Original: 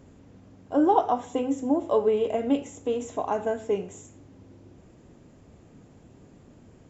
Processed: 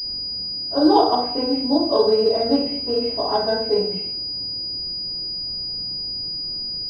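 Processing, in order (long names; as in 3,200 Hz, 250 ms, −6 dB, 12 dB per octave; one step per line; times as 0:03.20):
rectangular room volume 58 cubic metres, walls mixed, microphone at 2.9 metres
switching amplifier with a slow clock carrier 4,900 Hz
level −7.5 dB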